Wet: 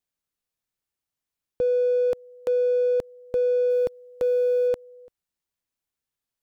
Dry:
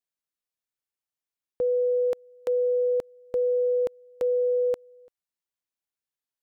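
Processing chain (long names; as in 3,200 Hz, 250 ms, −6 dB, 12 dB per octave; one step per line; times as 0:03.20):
0:03.70–0:04.69: one scale factor per block 7 bits
low-shelf EQ 220 Hz +8.5 dB
in parallel at −6.5 dB: soft clipping −36 dBFS, distortion −8 dB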